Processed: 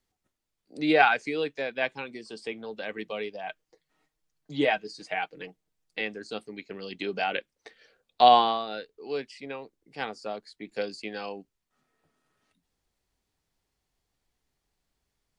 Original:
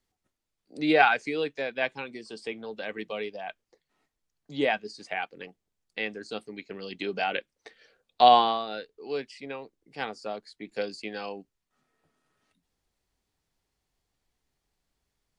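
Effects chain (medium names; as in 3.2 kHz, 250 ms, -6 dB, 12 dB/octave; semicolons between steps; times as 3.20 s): 3.43–6.01 s: comb 6.4 ms, depth 54%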